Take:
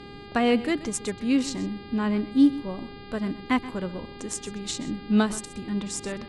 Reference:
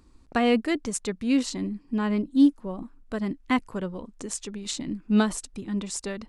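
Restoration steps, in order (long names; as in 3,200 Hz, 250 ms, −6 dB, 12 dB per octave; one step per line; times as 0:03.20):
hum removal 404.1 Hz, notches 12
noise reduction from a noise print 12 dB
echo removal 128 ms −16.5 dB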